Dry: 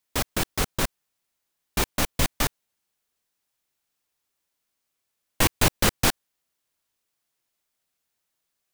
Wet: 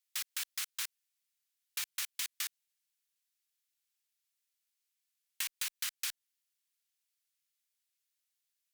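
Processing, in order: Bessel high-pass 2.3 kHz, order 4; compression 16:1, threshold -28 dBFS, peak gain reduction 9 dB; one-sided clip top -22 dBFS; trim -4.5 dB

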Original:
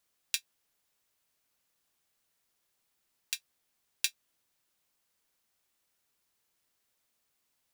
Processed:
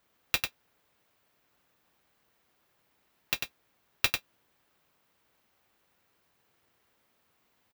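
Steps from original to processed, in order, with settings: square wave that keeps the level; high-pass 41 Hz; peaking EQ 8.1 kHz -12 dB 2.4 oct; delay 96 ms -5.5 dB; trim +7 dB

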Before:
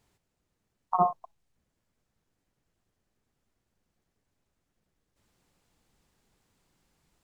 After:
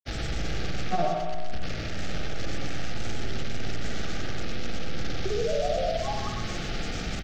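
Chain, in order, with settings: one-bit delta coder 32 kbps, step -34 dBFS; bass shelf 62 Hz +7 dB; in parallel at -2.5 dB: compressor with a negative ratio -38 dBFS; on the sum: crossover distortion -56 dBFS; painted sound rise, 5.23–6.27 s, 380–1100 Hz -26 dBFS; granulator, pitch spread up and down by 3 st; Butterworth band-stop 1 kHz, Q 2.9; feedback delay 124 ms, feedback 39%, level -7 dB; on a send at -3 dB: reverberation RT60 0.95 s, pre-delay 53 ms; on the sum: three bands compressed up and down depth 40%

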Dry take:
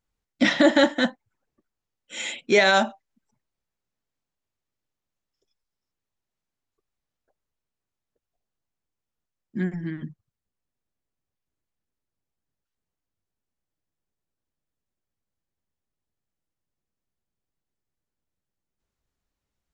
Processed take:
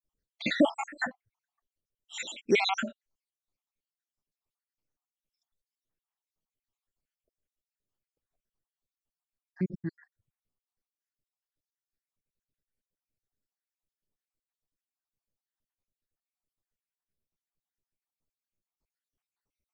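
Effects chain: random holes in the spectrogram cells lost 73%; 9.57–10.02 s: tape noise reduction on one side only decoder only; trim -2 dB

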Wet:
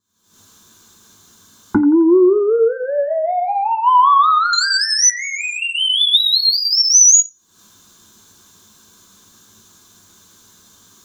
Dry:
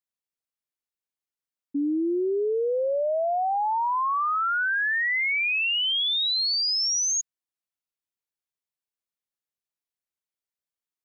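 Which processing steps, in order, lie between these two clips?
recorder AGC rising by 77 dB/s; 4.53–5.10 s: high-order bell 1.8 kHz +10.5 dB; in parallel at -1 dB: compression, threshold -34 dBFS, peak gain reduction 18.5 dB; on the sum: vibrato 5.2 Hz 75 cents; sine folder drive 10 dB, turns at -7 dBFS; feedback echo behind a band-pass 87 ms, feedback 36%, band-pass 1.1 kHz, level -12 dB; reverberation RT60 0.20 s, pre-delay 3 ms, DRR 6.5 dB; trim -10.5 dB

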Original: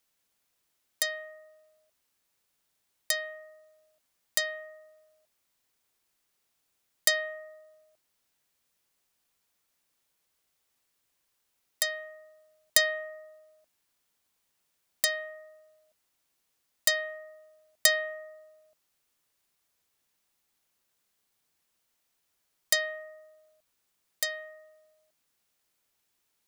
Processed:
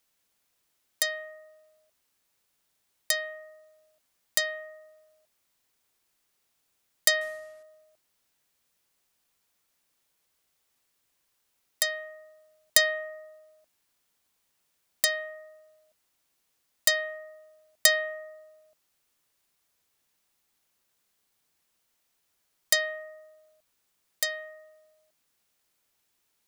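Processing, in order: 7.21–7.63 s: CVSD coder 64 kbps; trim +2 dB

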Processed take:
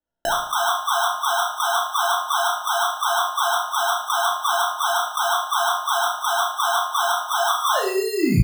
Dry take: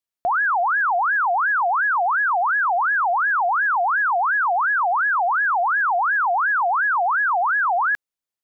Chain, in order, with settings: tape stop on the ending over 1.05 s; Chebyshev low-pass 960 Hz, order 5; peaking EQ 130 Hz -5.5 dB 0.77 oct; in parallel at -3 dB: peak limiter -27.5 dBFS, peak gain reduction 11 dB; on the sum: compressor with a negative ratio -23 dBFS, ratio -0.5; sample-and-hold 19×; doubling 16 ms -11 dB; on a send: flutter echo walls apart 5.8 m, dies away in 0.43 s; on the sum: simulated room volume 490 m³, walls furnished, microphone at 2.5 m

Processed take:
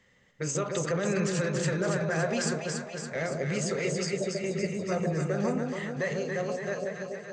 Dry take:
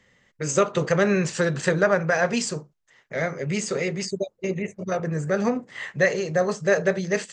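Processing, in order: fade out at the end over 2.05 s; peak limiter -18.5 dBFS, peak gain reduction 11.5 dB; echo whose repeats swap between lows and highs 141 ms, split 820 Hz, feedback 78%, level -2.5 dB; trim -3.5 dB

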